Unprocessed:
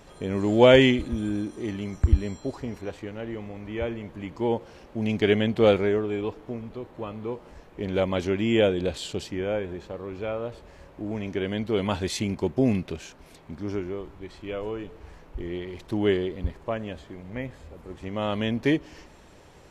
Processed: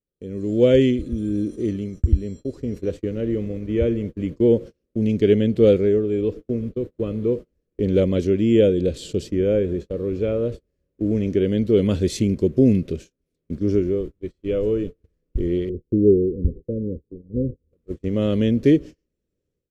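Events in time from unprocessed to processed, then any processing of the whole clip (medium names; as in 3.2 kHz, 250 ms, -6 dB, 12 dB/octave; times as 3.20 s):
15.69–17.73 s: steep low-pass 530 Hz 96 dB/octave
whole clip: gate -38 dBFS, range -35 dB; FFT filter 500 Hz 0 dB, 840 Hz -26 dB, 1.2 kHz -16 dB, 5.9 kHz -7 dB; level rider gain up to 15.5 dB; trim -4 dB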